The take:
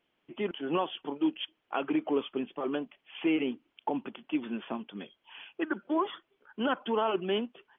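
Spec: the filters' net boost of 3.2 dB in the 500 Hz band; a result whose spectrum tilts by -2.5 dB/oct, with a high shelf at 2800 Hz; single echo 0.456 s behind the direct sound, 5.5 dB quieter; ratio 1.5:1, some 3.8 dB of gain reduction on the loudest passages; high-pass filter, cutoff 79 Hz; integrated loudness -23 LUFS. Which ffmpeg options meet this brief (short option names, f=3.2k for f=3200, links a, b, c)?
-af "highpass=79,equalizer=f=500:t=o:g=4,highshelf=f=2.8k:g=7,acompressor=threshold=-32dB:ratio=1.5,aecho=1:1:456:0.531,volume=10dB"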